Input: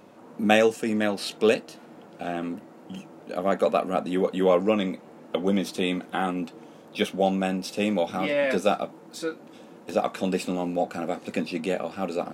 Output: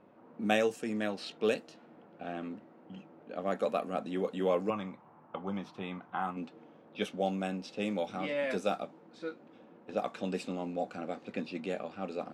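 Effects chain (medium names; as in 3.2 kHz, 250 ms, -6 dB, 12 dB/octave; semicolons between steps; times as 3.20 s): 4.70–6.37 s: graphic EQ 125/250/500/1000/2000/4000/8000 Hz +6/-7/-8/+10/-4/-7/-9 dB; level-controlled noise filter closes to 2.1 kHz, open at -18.5 dBFS; trim -9 dB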